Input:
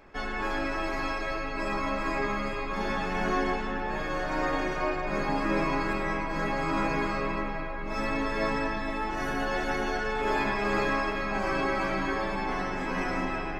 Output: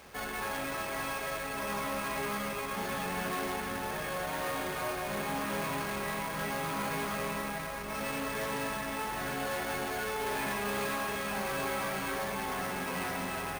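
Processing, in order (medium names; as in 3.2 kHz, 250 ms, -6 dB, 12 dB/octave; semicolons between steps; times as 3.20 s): saturation -31 dBFS, distortion -9 dB; feedback echo behind a high-pass 301 ms, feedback 83%, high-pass 1.6 kHz, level -12 dB; careless resampling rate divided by 4×, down filtered, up hold; high-pass 48 Hz 24 dB/octave; peaking EQ 320 Hz -12 dB 0.24 oct; companded quantiser 4-bit; band-stop 7.6 kHz, Q 14; doubling 44 ms -12 dB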